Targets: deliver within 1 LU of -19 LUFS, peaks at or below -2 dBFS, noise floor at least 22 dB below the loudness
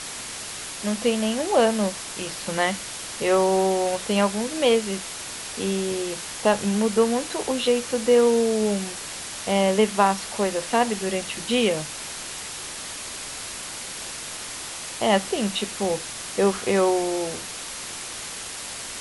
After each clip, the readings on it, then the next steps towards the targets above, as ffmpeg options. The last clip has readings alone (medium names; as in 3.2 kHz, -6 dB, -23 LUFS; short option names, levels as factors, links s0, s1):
noise floor -35 dBFS; noise floor target -47 dBFS; loudness -24.5 LUFS; peak level -5.5 dBFS; loudness target -19.0 LUFS
-> -af "afftdn=nr=12:nf=-35"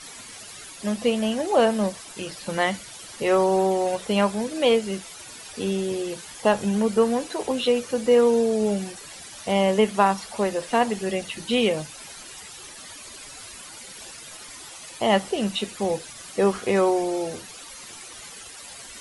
noise floor -42 dBFS; noise floor target -46 dBFS
-> -af "afftdn=nr=6:nf=-42"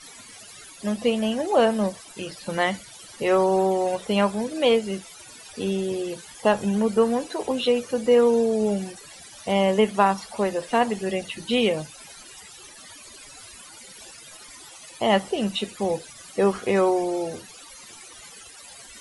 noise floor -45 dBFS; noise floor target -46 dBFS
-> -af "afftdn=nr=6:nf=-45"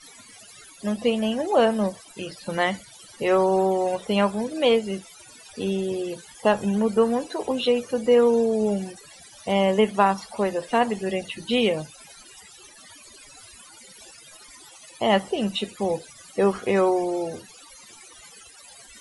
noise floor -48 dBFS; loudness -23.5 LUFS; peak level -5.5 dBFS; loudness target -19.0 LUFS
-> -af "volume=1.68,alimiter=limit=0.794:level=0:latency=1"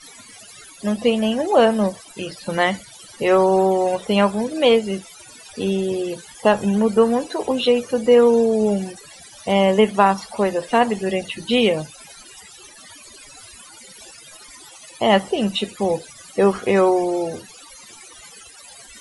loudness -19.0 LUFS; peak level -2.0 dBFS; noise floor -44 dBFS